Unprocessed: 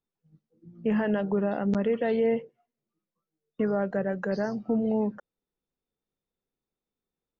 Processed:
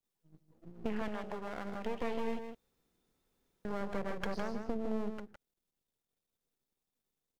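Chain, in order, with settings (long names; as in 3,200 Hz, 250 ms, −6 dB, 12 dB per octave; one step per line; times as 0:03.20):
half-wave rectification
high-shelf EQ 3,400 Hz +7 dB
downward compressor 6 to 1, threshold −33 dBFS, peak gain reduction 11 dB
0:01.08–0:01.85: low-shelf EQ 360 Hz −9 dB
0:02.39–0:03.65: fill with room tone
single-tap delay 159 ms −7.5 dB
level +1 dB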